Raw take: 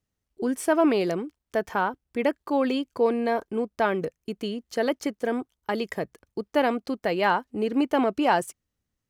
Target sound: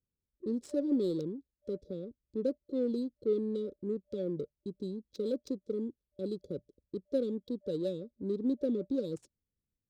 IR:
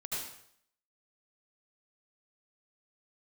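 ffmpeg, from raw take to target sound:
-af "afftfilt=real='re*(1-between(b*sr/4096,640,3600))':imag='im*(1-between(b*sr/4096,640,3600))':win_size=4096:overlap=0.75,asetrate=40517,aresample=44100,adynamicsmooth=sensitivity=7.5:basefreq=1900,volume=0.422"

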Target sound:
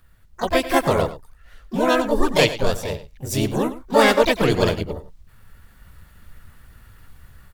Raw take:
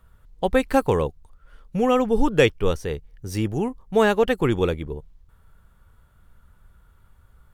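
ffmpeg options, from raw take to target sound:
-filter_complex "[0:a]dynaudnorm=f=500:g=3:m=2.82,aecho=1:1:100:0.188,asplit=4[s0][s1][s2][s3];[s1]asetrate=55563,aresample=44100,atempo=0.793701,volume=0.794[s4];[s2]asetrate=58866,aresample=44100,atempo=0.749154,volume=0.562[s5];[s3]asetrate=88200,aresample=44100,atempo=0.5,volume=0.282[s6];[s0][s4][s5][s6]amix=inputs=4:normalize=0,highshelf=f=2400:g=8,volume=0.562"

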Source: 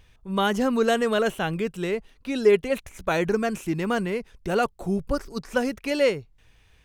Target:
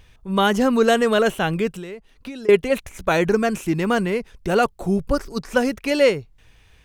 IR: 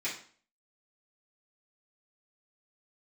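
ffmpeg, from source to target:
-filter_complex "[0:a]asettb=1/sr,asplit=3[s0][s1][s2];[s0]atrim=end=1.714[s3];[s1]atrim=start=1.71:end=2.49,asetpts=PTS-STARTPTS,afade=t=in:d=0.004:c=qsin,afade=t=out:st=0.776:d=0.004:c=qsin,acompressor=threshold=0.0158:ratio=16[s4];[s2]atrim=start=2.486[s5];[s3][s4]acrossfade=d=0.004:c1=hsin:c2=qsin[s6];[s6][s5]acrossfade=d=0.004:c1=qsin:c2=hsin,volume=1.78"

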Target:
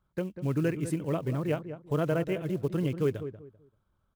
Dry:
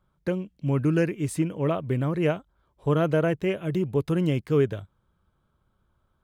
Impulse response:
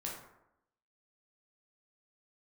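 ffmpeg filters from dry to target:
-filter_complex "[0:a]acrusher=bits=7:mode=log:mix=0:aa=0.000001,asplit=2[s0][s1];[s1]adelay=292,lowpass=f=1100:p=1,volume=0.316,asplit=2[s2][s3];[s3]adelay=292,lowpass=f=1100:p=1,volume=0.26,asplit=2[s4][s5];[s5]adelay=292,lowpass=f=1100:p=1,volume=0.26[s6];[s0][s2][s4][s6]amix=inputs=4:normalize=0,atempo=1.5,volume=0.562"

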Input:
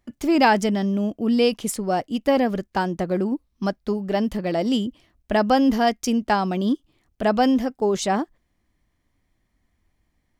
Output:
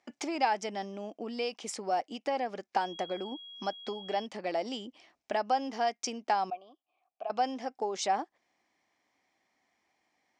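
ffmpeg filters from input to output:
-filter_complex "[0:a]acompressor=threshold=0.0282:ratio=4,asettb=1/sr,asplit=3[s0][s1][s2];[s0]atrim=end=6.504[s3];[s1]atrim=start=6.5:end=7.3,asetpts=PTS-STARTPTS,afade=t=in:d=0.004:c=qsin,afade=t=out:st=0.796:d=0.004:c=qsin,asplit=3[s4][s5][s6];[s4]bandpass=f=730:t=q:w=8,volume=1[s7];[s5]bandpass=f=1090:t=q:w=8,volume=0.501[s8];[s6]bandpass=f=2440:t=q:w=8,volume=0.355[s9];[s7][s8][s9]amix=inputs=3:normalize=0[s10];[s2]atrim=start=7.296[s11];[s3][s10]acrossfade=d=0.004:c1=hsin:c2=qsin[s12];[s12][s11]acrossfade=d=0.004:c1=qsin:c2=hsin,highpass=400,equalizer=f=790:t=q:w=4:g=8,equalizer=f=2300:t=q:w=4:g=5,equalizer=f=5400:t=q:w=4:g=5,lowpass=f=7800:w=0.5412,lowpass=f=7800:w=1.3066,asettb=1/sr,asplit=3[s13][s14][s15];[s13]atrim=end=2.814[s16];[s14]atrim=start=2.81:end=4.26,asetpts=PTS-STARTPTS,afade=t=in:d=0.004:c=qsin,afade=t=out:st=1.446:d=0.004:c=qsin,aeval=exprs='val(0)+0.00562*sin(2*PI*3300*n/s)':c=same[s17];[s15]atrim=start=4.256[s18];[s16][s17]acrossfade=d=0.004:c1=hsin:c2=qsin[s19];[s19][s18]acrossfade=d=0.004:c1=qsin:c2=hsin"

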